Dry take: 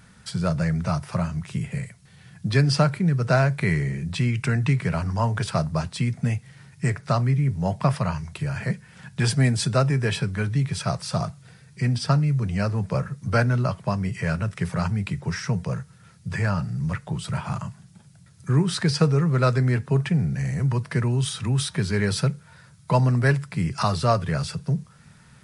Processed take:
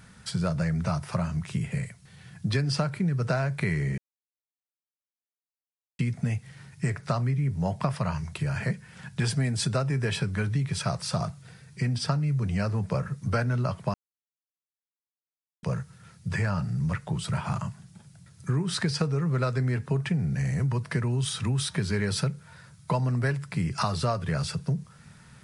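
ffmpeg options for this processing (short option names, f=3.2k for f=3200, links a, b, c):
-filter_complex "[0:a]asplit=5[a][b][c][d][e];[a]atrim=end=3.98,asetpts=PTS-STARTPTS,afade=t=out:st=3.976:d=0.004:c=hsin[f];[b]atrim=start=3.98:end=5.99,asetpts=PTS-STARTPTS,volume=0[g];[c]atrim=start=5.99:end=13.94,asetpts=PTS-STARTPTS,afade=t=in:d=0.004:c=hsin,afade=t=out:st=7.946:d=0.004:c=hsin[h];[d]atrim=start=13.94:end=15.63,asetpts=PTS-STARTPTS,volume=0[i];[e]atrim=start=15.63,asetpts=PTS-STARTPTS,afade=t=in:d=0.004:c=hsin[j];[f][g][h][i][j]concat=n=5:v=0:a=1,acompressor=threshold=-23dB:ratio=6"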